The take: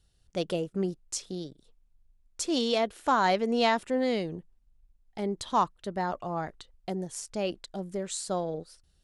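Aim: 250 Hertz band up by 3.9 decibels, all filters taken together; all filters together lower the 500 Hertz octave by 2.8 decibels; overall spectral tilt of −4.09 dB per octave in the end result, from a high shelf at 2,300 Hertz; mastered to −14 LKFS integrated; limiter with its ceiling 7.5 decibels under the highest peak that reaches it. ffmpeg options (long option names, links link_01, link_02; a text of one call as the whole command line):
ffmpeg -i in.wav -af "equalizer=frequency=250:width_type=o:gain=6,equalizer=frequency=500:width_type=o:gain=-5.5,highshelf=frequency=2300:gain=5,volume=17dB,alimiter=limit=-1dB:level=0:latency=1" out.wav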